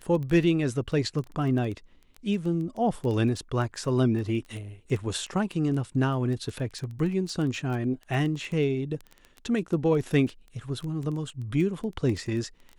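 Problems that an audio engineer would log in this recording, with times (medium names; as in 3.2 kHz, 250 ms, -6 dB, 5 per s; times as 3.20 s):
crackle 10 per s -31 dBFS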